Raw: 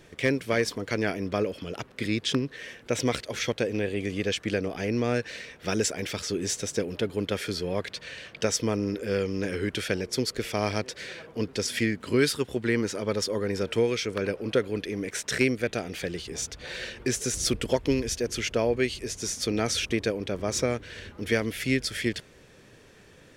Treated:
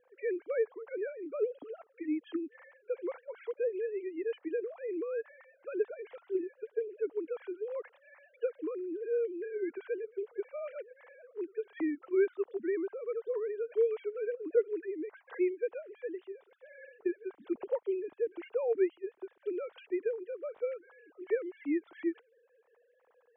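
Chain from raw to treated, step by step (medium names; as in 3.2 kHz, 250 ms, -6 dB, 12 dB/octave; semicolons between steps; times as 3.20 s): formants replaced by sine waves; low-pass 1.2 kHz 12 dB/octave; trim -6.5 dB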